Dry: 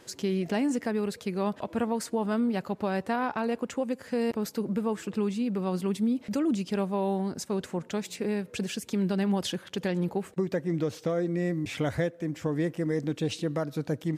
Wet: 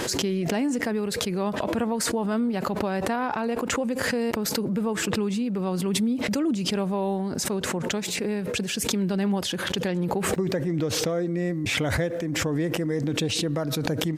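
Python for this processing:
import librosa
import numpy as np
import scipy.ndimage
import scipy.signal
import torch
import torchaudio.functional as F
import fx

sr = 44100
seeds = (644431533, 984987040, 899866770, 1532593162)

y = fx.pre_swell(x, sr, db_per_s=21.0)
y = y * librosa.db_to_amplitude(1.5)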